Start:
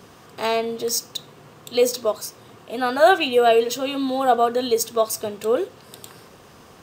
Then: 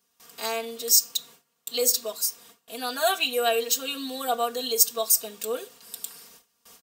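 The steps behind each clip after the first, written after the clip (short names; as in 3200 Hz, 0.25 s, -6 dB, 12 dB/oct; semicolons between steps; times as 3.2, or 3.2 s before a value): pre-emphasis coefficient 0.9; gate with hold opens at -45 dBFS; comb 4.3 ms, depth 83%; gain +4 dB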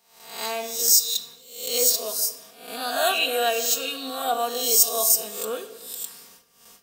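spectral swells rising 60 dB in 0.64 s; on a send at -9 dB: reverb RT60 1.1 s, pre-delay 5 ms; on the sum: gain -1 dB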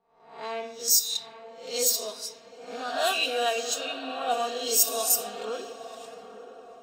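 bin magnitudes rounded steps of 15 dB; diffused feedback echo 0.924 s, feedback 42%, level -10 dB; low-pass opened by the level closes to 1100 Hz, open at -16 dBFS; gain -3 dB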